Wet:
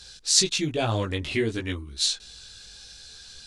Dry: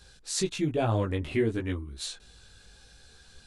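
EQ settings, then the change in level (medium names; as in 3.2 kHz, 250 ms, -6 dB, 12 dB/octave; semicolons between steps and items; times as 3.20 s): peaking EQ 5 kHz +14.5 dB 2.1 oct; 0.0 dB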